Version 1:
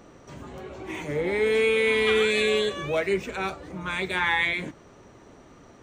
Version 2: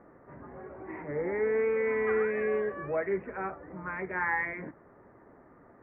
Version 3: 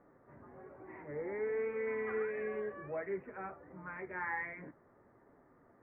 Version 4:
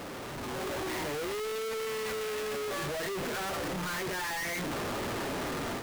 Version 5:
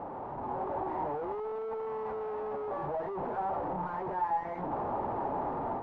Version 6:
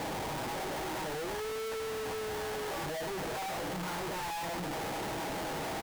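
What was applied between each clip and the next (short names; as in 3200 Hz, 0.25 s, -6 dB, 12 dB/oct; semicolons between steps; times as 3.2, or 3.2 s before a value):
elliptic low-pass 1900 Hz, stop band 50 dB; low shelf 120 Hz -7 dB; gain -4 dB
flange 1.3 Hz, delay 6.7 ms, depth 2.5 ms, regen -60%; gain -4.5 dB
infinite clipping; AGC gain up to 7 dB
synth low-pass 860 Hz, resonance Q 5; gain -4 dB
delta modulation 32 kbps, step -52.5 dBFS; comb 6.3 ms, depth 48%; Schmitt trigger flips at -49 dBFS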